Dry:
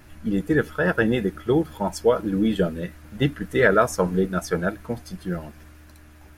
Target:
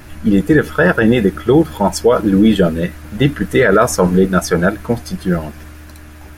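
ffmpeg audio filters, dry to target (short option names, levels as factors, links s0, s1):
-af "alimiter=level_in=4.47:limit=0.891:release=50:level=0:latency=1,volume=0.891"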